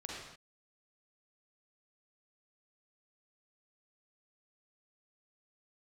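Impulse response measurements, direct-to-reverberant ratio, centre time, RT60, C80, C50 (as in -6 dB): -4.0 dB, 78 ms, no single decay rate, 1.0 dB, -2.5 dB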